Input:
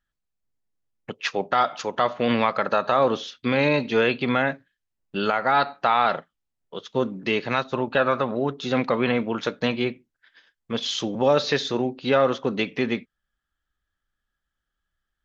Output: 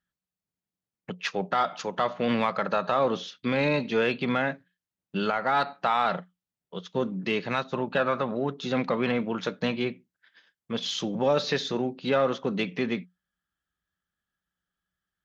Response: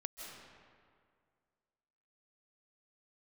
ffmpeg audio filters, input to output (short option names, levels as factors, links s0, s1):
-filter_complex "[0:a]highpass=73,equalizer=f=180:w=7.9:g=13.5,asplit=2[s0][s1];[s1]asoftclip=type=tanh:threshold=0.112,volume=0.355[s2];[s0][s2]amix=inputs=2:normalize=0,volume=0.501"